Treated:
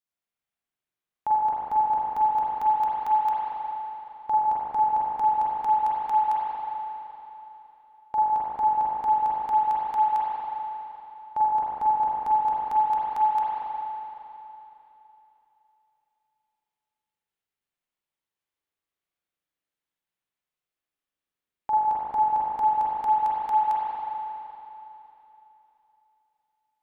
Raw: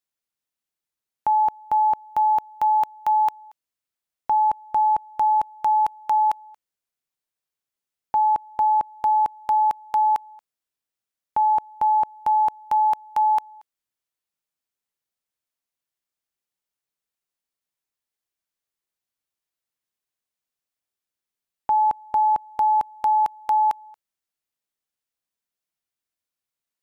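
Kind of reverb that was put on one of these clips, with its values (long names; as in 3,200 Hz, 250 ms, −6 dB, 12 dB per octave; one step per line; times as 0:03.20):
spring reverb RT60 3.3 s, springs 39/46 ms, chirp 60 ms, DRR −7.5 dB
level −7 dB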